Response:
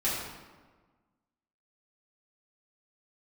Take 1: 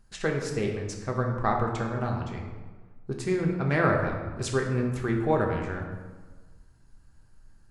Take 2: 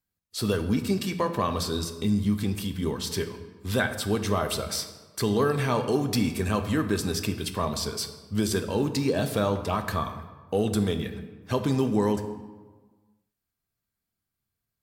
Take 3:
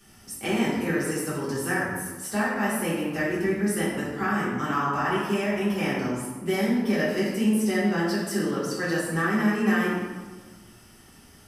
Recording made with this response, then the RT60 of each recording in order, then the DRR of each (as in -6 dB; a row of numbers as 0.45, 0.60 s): 3; 1.4, 1.4, 1.4 s; 0.0, 7.0, -9.5 dB